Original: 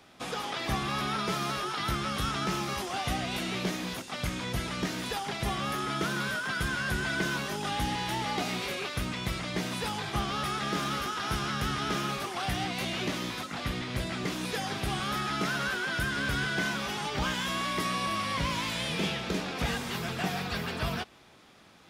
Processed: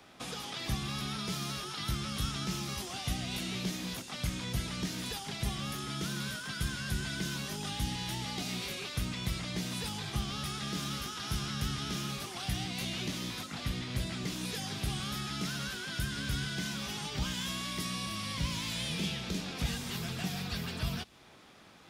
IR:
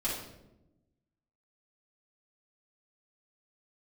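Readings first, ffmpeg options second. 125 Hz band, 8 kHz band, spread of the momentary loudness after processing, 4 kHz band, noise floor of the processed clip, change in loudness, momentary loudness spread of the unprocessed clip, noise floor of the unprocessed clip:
-1.0 dB, 0.0 dB, 3 LU, -2.5 dB, -47 dBFS, -4.5 dB, 4 LU, -45 dBFS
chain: -filter_complex "[0:a]acrossover=split=230|3000[a][b][c];[b]acompressor=threshold=-45dB:ratio=4[d];[a][d][c]amix=inputs=3:normalize=0"

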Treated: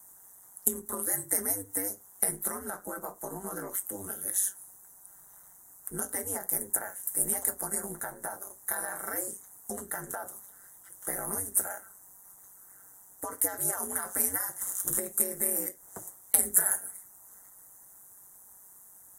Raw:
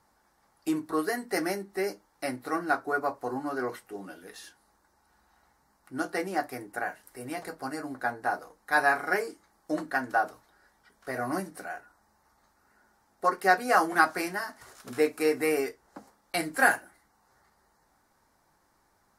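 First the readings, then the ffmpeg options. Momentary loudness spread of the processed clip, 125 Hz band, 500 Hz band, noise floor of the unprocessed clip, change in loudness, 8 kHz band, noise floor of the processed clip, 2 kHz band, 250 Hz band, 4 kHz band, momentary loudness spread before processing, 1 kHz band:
15 LU, -2.0 dB, -10.0 dB, -69 dBFS, -0.5 dB, +16.0 dB, -55 dBFS, -13.5 dB, -9.5 dB, -10.5 dB, 16 LU, -13.5 dB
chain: -af "acontrast=78,superequalizer=12b=0.316:14b=0.501,alimiter=limit=-14dB:level=0:latency=1:release=11,acompressor=threshold=-29dB:ratio=8,aeval=exprs='val(0)*sin(2*PI*96*n/s)':c=same,aexciter=amount=9.4:drive=9:freq=6.6k,volume=-4dB"

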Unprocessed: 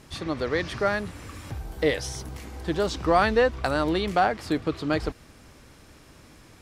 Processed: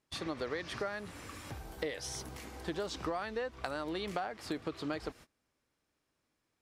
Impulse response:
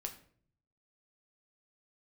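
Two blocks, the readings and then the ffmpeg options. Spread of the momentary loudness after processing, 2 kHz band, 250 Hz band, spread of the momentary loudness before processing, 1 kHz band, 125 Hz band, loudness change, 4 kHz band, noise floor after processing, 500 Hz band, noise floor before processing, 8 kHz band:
9 LU, -13.0 dB, -12.5 dB, 16 LU, -15.0 dB, -14.0 dB, -13.5 dB, -9.0 dB, -83 dBFS, -13.5 dB, -52 dBFS, -6.0 dB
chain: -af "lowshelf=f=170:g=-10,agate=range=-25dB:threshold=-45dB:ratio=16:detection=peak,acompressor=threshold=-30dB:ratio=10,volume=-3.5dB"

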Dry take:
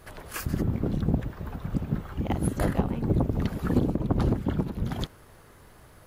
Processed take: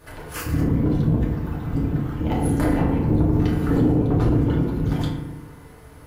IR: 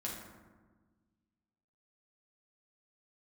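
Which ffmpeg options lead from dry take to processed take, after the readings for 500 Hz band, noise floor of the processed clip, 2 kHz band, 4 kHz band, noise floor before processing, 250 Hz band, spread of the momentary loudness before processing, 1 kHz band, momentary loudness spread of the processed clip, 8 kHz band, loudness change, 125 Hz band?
+6.0 dB, -44 dBFS, +5.0 dB, +2.5 dB, -53 dBFS, +7.5 dB, 9 LU, +5.0 dB, 8 LU, +3.0 dB, +7.0 dB, +7.0 dB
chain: -filter_complex "[0:a]aeval=exprs='(tanh(7.94*val(0)+0.45)-tanh(0.45))/7.94':c=same[a];[1:a]atrim=start_sample=2205,asetrate=61740,aresample=44100[b];[a][b]afir=irnorm=-1:irlink=0,alimiter=level_in=17.5dB:limit=-1dB:release=50:level=0:latency=1,volume=-8.5dB"

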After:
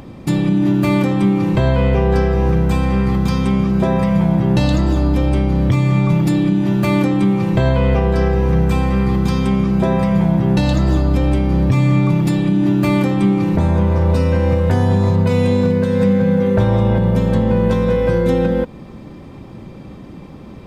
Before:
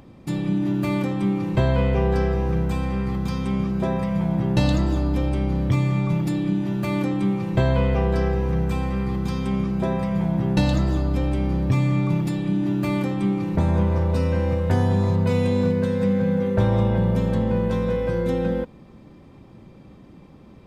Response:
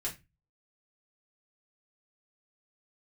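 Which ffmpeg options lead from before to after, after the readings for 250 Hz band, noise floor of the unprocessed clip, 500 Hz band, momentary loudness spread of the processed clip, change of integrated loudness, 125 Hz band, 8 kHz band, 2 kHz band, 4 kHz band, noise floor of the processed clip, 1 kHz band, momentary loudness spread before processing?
+7.5 dB, -47 dBFS, +6.5 dB, 2 LU, +7.0 dB, +6.5 dB, n/a, +7.0 dB, +6.5 dB, -35 dBFS, +7.0 dB, 4 LU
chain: -filter_complex "[0:a]asplit=2[a][b];[b]acompressor=threshold=-28dB:ratio=6,volume=-1.5dB[c];[a][c]amix=inputs=2:normalize=0,alimiter=limit=-12dB:level=0:latency=1:release=169,volume=6dB"

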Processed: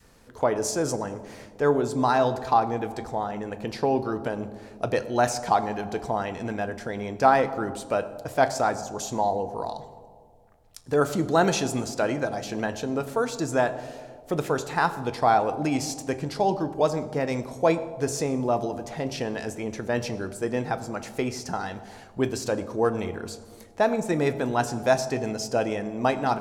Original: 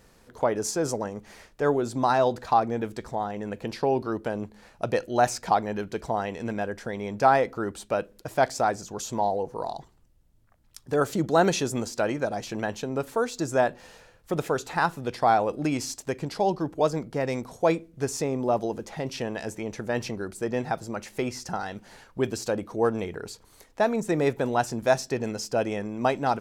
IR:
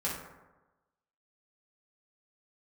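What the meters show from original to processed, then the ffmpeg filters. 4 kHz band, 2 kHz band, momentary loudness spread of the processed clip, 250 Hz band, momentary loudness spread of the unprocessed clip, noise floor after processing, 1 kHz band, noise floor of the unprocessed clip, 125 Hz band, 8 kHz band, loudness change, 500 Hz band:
+1.0 dB, +1.0 dB, 10 LU, +1.5 dB, 11 LU, -50 dBFS, +1.0 dB, -58 dBFS, +1.5 dB, +1.0 dB, +1.0 dB, +1.0 dB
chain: -filter_complex "[0:a]adynamicequalizer=threshold=0.0158:dfrequency=530:dqfactor=1.4:tfrequency=530:tqfactor=1.4:attack=5:release=100:ratio=0.375:range=2.5:mode=cutabove:tftype=bell,asplit=2[a][b];[1:a]atrim=start_sample=2205,asetrate=22932,aresample=44100[c];[b][c]afir=irnorm=-1:irlink=0,volume=-18dB[d];[a][d]amix=inputs=2:normalize=0"

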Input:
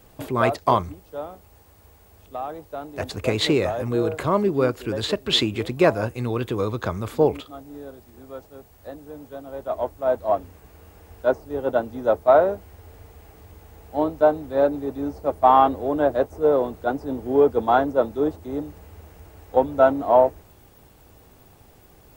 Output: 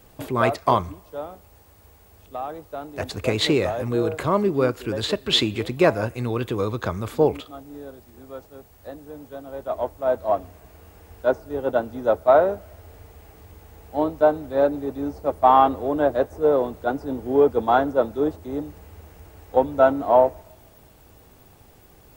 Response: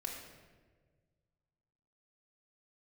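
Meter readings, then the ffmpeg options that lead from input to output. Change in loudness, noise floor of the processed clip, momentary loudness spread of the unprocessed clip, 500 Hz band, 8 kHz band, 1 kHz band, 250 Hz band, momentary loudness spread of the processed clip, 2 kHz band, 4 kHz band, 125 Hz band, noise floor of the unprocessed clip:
0.0 dB, -52 dBFS, 19 LU, 0.0 dB, n/a, 0.0 dB, 0.0 dB, 19 LU, +0.5 dB, +0.5 dB, 0.0 dB, -53 dBFS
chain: -filter_complex "[0:a]asplit=2[a][b];[b]highpass=1k[c];[1:a]atrim=start_sample=2205[d];[c][d]afir=irnorm=-1:irlink=0,volume=-17.5dB[e];[a][e]amix=inputs=2:normalize=0"

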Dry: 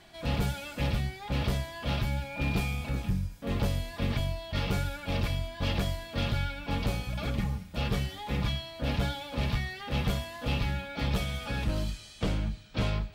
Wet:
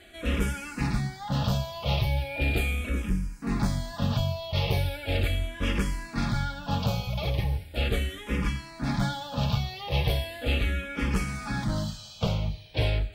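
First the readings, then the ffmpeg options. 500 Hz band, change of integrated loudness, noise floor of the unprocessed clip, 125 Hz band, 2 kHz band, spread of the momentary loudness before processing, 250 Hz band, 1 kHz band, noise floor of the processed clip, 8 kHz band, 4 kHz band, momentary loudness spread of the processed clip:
+3.0 dB, +3.0 dB, -48 dBFS, +3.0 dB, +3.5 dB, 3 LU, +3.0 dB, +3.0 dB, -45 dBFS, +3.0 dB, +2.5 dB, 4 LU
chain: -filter_complex "[0:a]asplit=2[a][b];[b]afreqshift=-0.38[c];[a][c]amix=inputs=2:normalize=1,volume=6dB"

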